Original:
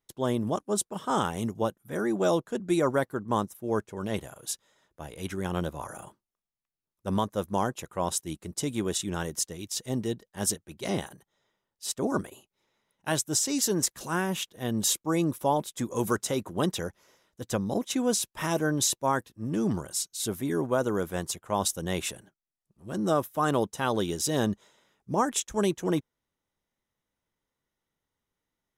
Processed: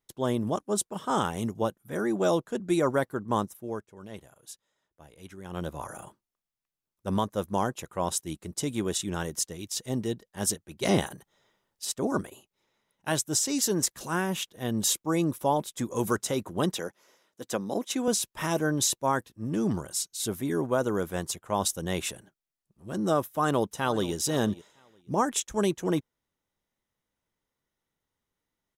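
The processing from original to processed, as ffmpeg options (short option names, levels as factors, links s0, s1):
-filter_complex "[0:a]asettb=1/sr,asplit=3[s0][s1][s2];[s0]atrim=end=10.814[s3];[s1]atrim=start=10.81:end=11.85,asetpts=PTS-STARTPTS,afade=t=in:d=0.004:c=qsin,afade=t=out:st=1.036:d=0.004:c=qsin,acontrast=53[s4];[s2]atrim=start=11.846[s5];[s3][s4]acrossfade=d=0.004:c1=hsin:c2=qsin[s6];[s6][s5]acrossfade=d=0.004:c1=qsin:c2=hsin,asettb=1/sr,asplit=3[s7][s8][s9];[s7]atrim=end=16.774[s10];[s8]atrim=start=16.77:end=18.08,asetpts=PTS-STARTPTS,afade=t=in:d=0.004:c=qsin,afade=t=out:st=1.306:d=0.004:c=qsin,highpass=230[s11];[s9]atrim=start=18.076[s12];[s10][s11]acrossfade=d=0.004:c1=hsin:c2=qsin[s13];[s13][s12]acrossfade=d=0.004:c1=qsin:c2=hsin,asplit=2[s14][s15];[s15]afade=t=in:st=23.23:d=0.01,afade=t=out:st=24.13:d=0.01,aecho=0:1:480|960:0.141254|0.0211881[s16];[s14][s16]amix=inputs=2:normalize=0,asplit=3[s17][s18][s19];[s17]atrim=end=3.82,asetpts=PTS-STARTPTS,afade=t=out:st=3.52:d=0.3:silence=0.266073[s20];[s18]atrim=start=3.82:end=5.45,asetpts=PTS-STARTPTS,volume=0.266[s21];[s19]atrim=start=5.45,asetpts=PTS-STARTPTS,afade=t=in:d=0.3:silence=0.266073[s22];[s20][s21][s22]concat=n=3:v=0:a=1"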